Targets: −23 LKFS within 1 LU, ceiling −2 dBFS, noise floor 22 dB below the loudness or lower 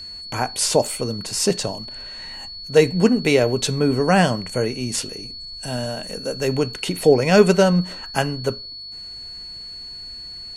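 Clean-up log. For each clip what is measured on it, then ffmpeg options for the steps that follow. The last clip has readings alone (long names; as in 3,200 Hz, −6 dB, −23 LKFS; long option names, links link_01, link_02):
interfering tone 4,400 Hz; level of the tone −33 dBFS; integrated loudness −20.0 LKFS; sample peak −2.0 dBFS; target loudness −23.0 LKFS
→ -af "bandreject=frequency=4400:width=30"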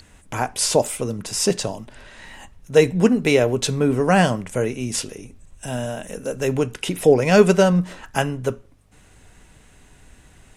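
interfering tone none found; integrated loudness −20.0 LKFS; sample peak −2.0 dBFS; target loudness −23.0 LKFS
→ -af "volume=-3dB"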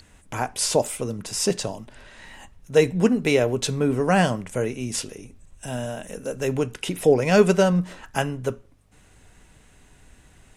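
integrated loudness −23.0 LKFS; sample peak −5.0 dBFS; background noise floor −55 dBFS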